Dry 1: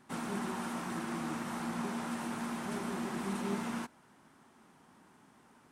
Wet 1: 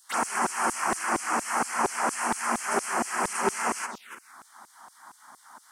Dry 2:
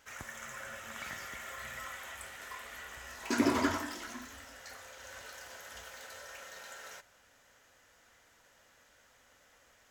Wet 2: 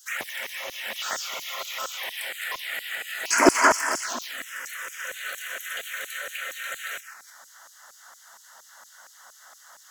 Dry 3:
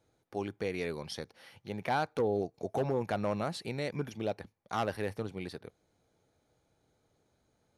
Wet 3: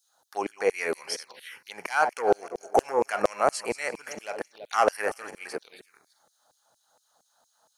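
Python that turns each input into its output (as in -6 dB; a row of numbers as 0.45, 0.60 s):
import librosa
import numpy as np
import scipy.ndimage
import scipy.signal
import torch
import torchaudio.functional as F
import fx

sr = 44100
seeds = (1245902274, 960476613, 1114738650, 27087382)

y = fx.reverse_delay_fb(x, sr, ms=166, feedback_pct=42, wet_db=-12.5)
y = fx.env_phaser(y, sr, low_hz=370.0, high_hz=3700.0, full_db=-36.5)
y = fx.filter_lfo_highpass(y, sr, shape='saw_down', hz=4.3, low_hz=410.0, high_hz=6100.0, q=0.93)
y = y * 10.0 ** (-30 / 20.0) / np.sqrt(np.mean(np.square(y)))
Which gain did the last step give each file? +18.0, +18.5, +15.0 dB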